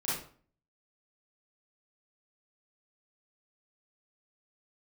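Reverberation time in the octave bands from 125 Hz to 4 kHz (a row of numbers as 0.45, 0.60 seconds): 0.60, 0.55, 0.45, 0.45, 0.40, 0.35 seconds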